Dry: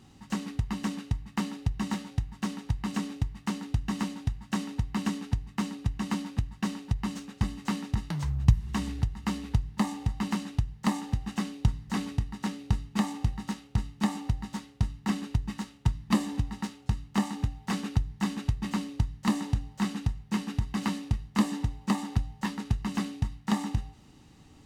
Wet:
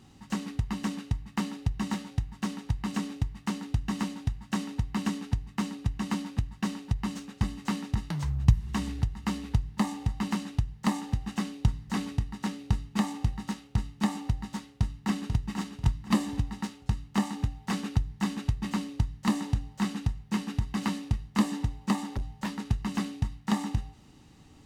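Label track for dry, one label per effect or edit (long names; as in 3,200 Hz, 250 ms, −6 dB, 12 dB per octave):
14.750000	15.460000	delay throw 490 ms, feedback 25%, level −6 dB
21.990000	22.570000	gain into a clipping stage and back gain 27 dB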